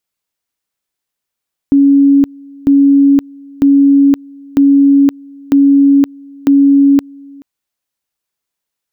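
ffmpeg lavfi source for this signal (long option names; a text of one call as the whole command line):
ffmpeg -f lavfi -i "aevalsrc='pow(10,(-4-27*gte(mod(t,0.95),0.52))/20)*sin(2*PI*279*t)':duration=5.7:sample_rate=44100" out.wav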